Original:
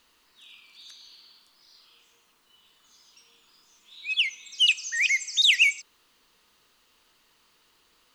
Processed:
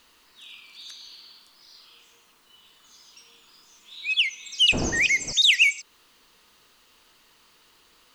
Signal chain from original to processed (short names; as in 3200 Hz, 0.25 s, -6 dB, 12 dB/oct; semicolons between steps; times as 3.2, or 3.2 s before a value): 4.72–5.31 wind noise 400 Hz -27 dBFS; in parallel at -1 dB: compressor, threshold -32 dBFS, peak gain reduction 15.5 dB